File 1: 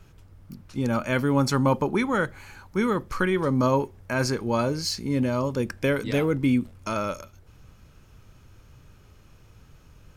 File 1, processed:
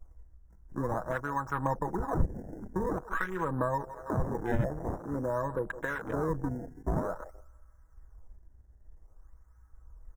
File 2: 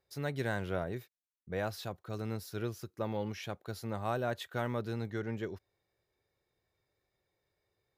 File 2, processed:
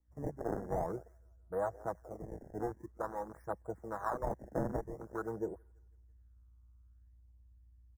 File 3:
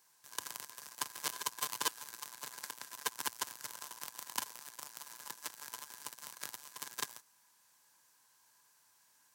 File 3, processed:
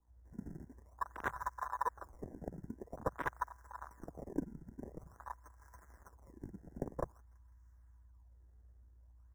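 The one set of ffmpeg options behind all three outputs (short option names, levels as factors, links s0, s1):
-filter_complex "[0:a]aecho=1:1:6.2:0.55,acrossover=split=1200[s0][s1];[s0]aeval=exprs='val(0)*(1-0.7/2+0.7/2*cos(2*PI*1.1*n/s))':c=same[s2];[s1]aeval=exprs='val(0)*(1-0.7/2-0.7/2*cos(2*PI*1.1*n/s))':c=same[s3];[s2][s3]amix=inputs=2:normalize=0,aeval=exprs='val(0)+0.00112*(sin(2*PI*60*n/s)+sin(2*PI*2*60*n/s)/2+sin(2*PI*3*60*n/s)/3+sin(2*PI*4*60*n/s)/4+sin(2*PI*5*60*n/s)/5)':c=same,equalizer=f=125:t=o:w=1:g=-11,equalizer=f=250:t=o:w=1:g=-5,equalizer=f=1000:t=o:w=1:g=8,equalizer=f=4000:t=o:w=1:g=-10,aecho=1:1:165|330|495|660:0.112|0.055|0.0269|0.0132,acrusher=samples=21:mix=1:aa=0.000001:lfo=1:lforange=33.6:lforate=0.49,adynamicequalizer=threshold=0.00355:dfrequency=1600:dqfactor=4.7:tfrequency=1600:tqfactor=4.7:attack=5:release=100:ratio=0.375:range=1.5:mode=boostabove:tftype=bell,acrossover=split=140[s4][s5];[s5]acompressor=threshold=0.0224:ratio=5[s6];[s4][s6]amix=inputs=2:normalize=0,asuperstop=centerf=3300:order=12:qfactor=0.94,afwtdn=0.00891,volume=1.5"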